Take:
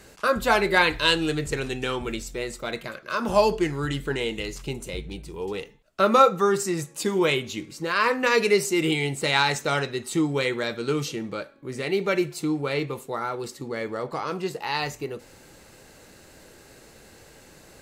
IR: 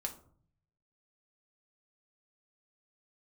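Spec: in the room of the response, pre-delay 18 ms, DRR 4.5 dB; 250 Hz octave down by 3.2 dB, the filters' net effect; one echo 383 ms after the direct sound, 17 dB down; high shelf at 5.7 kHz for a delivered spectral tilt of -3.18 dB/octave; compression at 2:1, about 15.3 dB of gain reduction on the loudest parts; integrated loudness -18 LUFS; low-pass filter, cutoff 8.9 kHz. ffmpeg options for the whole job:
-filter_complex "[0:a]lowpass=8900,equalizer=f=250:t=o:g=-5,highshelf=f=5700:g=7.5,acompressor=threshold=0.01:ratio=2,aecho=1:1:383:0.141,asplit=2[s0][s1];[1:a]atrim=start_sample=2205,adelay=18[s2];[s1][s2]afir=irnorm=-1:irlink=0,volume=0.631[s3];[s0][s3]amix=inputs=2:normalize=0,volume=6.68"

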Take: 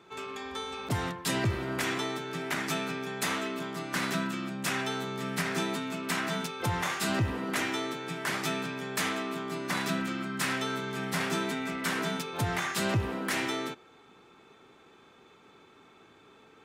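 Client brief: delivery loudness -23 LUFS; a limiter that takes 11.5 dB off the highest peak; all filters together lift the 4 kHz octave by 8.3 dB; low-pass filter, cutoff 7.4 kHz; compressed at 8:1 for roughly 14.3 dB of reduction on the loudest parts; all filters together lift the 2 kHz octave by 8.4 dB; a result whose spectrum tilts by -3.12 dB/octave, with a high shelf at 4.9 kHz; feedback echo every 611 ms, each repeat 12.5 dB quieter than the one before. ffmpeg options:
-af "lowpass=7400,equalizer=f=2000:t=o:g=8,equalizer=f=4000:t=o:g=4,highshelf=f=4900:g=9,acompressor=threshold=0.0158:ratio=8,alimiter=level_in=2.82:limit=0.0631:level=0:latency=1,volume=0.355,aecho=1:1:611|1222|1833:0.237|0.0569|0.0137,volume=7.5"

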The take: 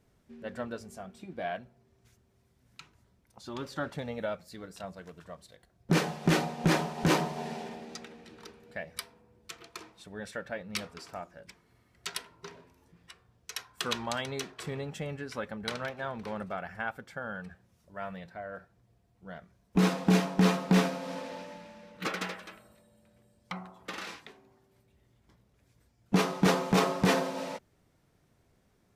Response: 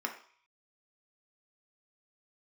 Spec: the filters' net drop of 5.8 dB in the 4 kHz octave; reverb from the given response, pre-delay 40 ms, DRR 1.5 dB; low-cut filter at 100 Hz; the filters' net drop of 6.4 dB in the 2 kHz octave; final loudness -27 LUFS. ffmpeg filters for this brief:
-filter_complex "[0:a]highpass=100,equalizer=f=2000:t=o:g=-7.5,equalizer=f=4000:t=o:g=-5,asplit=2[s0][s1];[1:a]atrim=start_sample=2205,adelay=40[s2];[s1][s2]afir=irnorm=-1:irlink=0,volume=0.531[s3];[s0][s3]amix=inputs=2:normalize=0,volume=1.68"

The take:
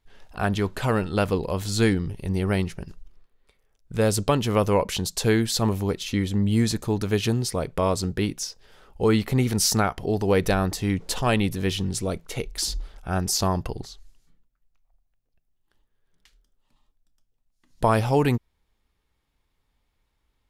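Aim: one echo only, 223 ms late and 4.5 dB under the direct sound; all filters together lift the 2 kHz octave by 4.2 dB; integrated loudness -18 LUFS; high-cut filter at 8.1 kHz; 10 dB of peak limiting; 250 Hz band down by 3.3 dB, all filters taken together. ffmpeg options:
-af "lowpass=8100,equalizer=f=250:t=o:g=-4.5,equalizer=f=2000:t=o:g=5.5,alimiter=limit=0.158:level=0:latency=1,aecho=1:1:223:0.596,volume=2.66"

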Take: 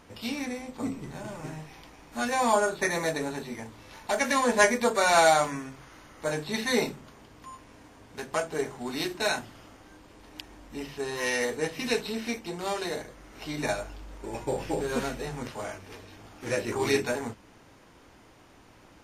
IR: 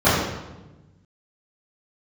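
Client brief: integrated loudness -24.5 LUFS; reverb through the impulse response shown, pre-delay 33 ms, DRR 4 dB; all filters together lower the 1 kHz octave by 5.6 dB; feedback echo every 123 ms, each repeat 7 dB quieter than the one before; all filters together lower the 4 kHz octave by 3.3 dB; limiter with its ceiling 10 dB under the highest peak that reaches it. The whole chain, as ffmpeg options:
-filter_complex "[0:a]equalizer=f=1000:t=o:g=-7.5,equalizer=f=4000:t=o:g=-3.5,alimiter=limit=0.0944:level=0:latency=1,aecho=1:1:123|246|369|492|615:0.447|0.201|0.0905|0.0407|0.0183,asplit=2[s0][s1];[1:a]atrim=start_sample=2205,adelay=33[s2];[s1][s2]afir=irnorm=-1:irlink=0,volume=0.0398[s3];[s0][s3]amix=inputs=2:normalize=0,volume=2"

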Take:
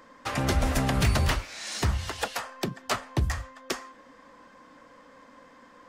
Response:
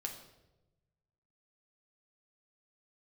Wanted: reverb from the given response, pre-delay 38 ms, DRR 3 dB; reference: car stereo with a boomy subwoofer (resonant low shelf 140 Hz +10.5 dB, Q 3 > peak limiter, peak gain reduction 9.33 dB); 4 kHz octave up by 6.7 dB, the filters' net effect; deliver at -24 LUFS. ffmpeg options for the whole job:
-filter_complex "[0:a]equalizer=f=4000:t=o:g=8.5,asplit=2[s0][s1];[1:a]atrim=start_sample=2205,adelay=38[s2];[s1][s2]afir=irnorm=-1:irlink=0,volume=0.794[s3];[s0][s3]amix=inputs=2:normalize=0,lowshelf=f=140:t=q:w=3:g=10.5,volume=0.562,alimiter=limit=0.282:level=0:latency=1"

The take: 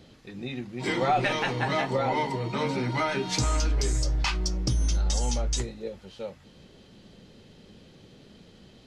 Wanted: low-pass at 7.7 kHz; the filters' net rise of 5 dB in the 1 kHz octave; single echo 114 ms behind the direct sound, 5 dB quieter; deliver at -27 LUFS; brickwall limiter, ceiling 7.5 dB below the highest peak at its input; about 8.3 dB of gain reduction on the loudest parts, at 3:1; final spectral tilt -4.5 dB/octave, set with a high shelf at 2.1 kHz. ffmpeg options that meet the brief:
-af "lowpass=7700,equalizer=f=1000:t=o:g=6,highshelf=f=2100:g=3.5,acompressor=threshold=0.0447:ratio=3,alimiter=limit=0.0794:level=0:latency=1,aecho=1:1:114:0.562,volume=1.5"

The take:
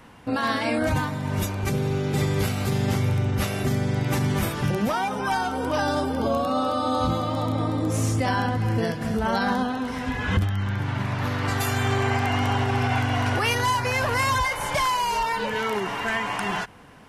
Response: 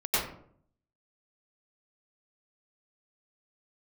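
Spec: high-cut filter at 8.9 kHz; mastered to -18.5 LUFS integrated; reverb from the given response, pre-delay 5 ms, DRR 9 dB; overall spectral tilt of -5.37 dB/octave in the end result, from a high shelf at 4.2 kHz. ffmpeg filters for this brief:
-filter_complex "[0:a]lowpass=8900,highshelf=f=4200:g=3.5,asplit=2[s0][s1];[1:a]atrim=start_sample=2205,adelay=5[s2];[s1][s2]afir=irnorm=-1:irlink=0,volume=0.1[s3];[s0][s3]amix=inputs=2:normalize=0,volume=1.78"

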